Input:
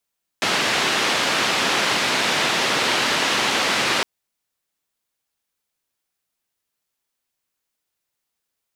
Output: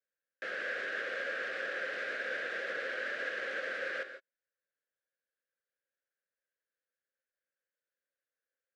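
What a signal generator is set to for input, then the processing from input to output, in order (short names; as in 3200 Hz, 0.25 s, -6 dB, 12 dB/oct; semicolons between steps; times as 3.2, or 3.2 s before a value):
noise band 180–3500 Hz, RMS -20.5 dBFS 3.61 s
limiter -19 dBFS; double band-pass 920 Hz, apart 1.6 oct; non-linear reverb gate 0.18 s rising, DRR 9.5 dB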